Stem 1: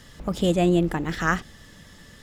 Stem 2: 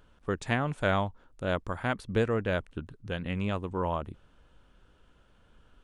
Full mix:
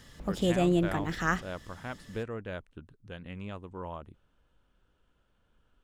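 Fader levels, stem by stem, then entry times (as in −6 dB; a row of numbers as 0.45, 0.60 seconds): −5.5, −9.5 decibels; 0.00, 0.00 seconds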